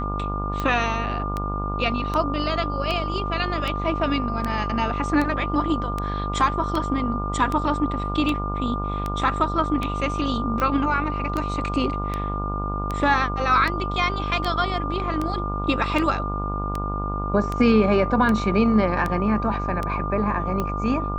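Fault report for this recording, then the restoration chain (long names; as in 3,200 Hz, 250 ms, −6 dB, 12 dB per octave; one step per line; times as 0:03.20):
mains buzz 50 Hz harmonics 28 −28 dBFS
scratch tick 78 rpm −13 dBFS
whistle 1,200 Hz −29 dBFS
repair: click removal
notch filter 1,200 Hz, Q 30
hum removal 50 Hz, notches 28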